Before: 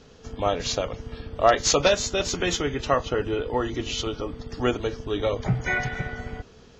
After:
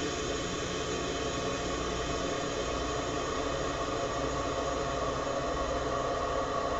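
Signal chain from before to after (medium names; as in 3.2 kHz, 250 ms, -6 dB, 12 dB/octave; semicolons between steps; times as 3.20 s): reverb removal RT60 1.8 s; hum 60 Hz, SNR 15 dB; Paulstretch 33×, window 1.00 s, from 2.64 s; trim -6 dB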